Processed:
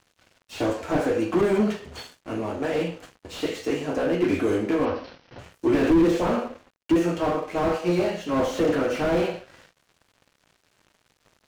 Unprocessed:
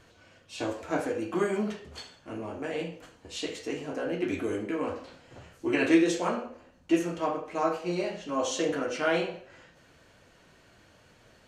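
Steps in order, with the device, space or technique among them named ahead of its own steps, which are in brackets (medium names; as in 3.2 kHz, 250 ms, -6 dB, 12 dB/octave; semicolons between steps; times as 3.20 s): early transistor amplifier (crossover distortion -54 dBFS; slew-rate limiter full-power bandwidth 21 Hz); 4.85–5.39 s: steep low-pass 5.9 kHz 96 dB/octave; trim +9 dB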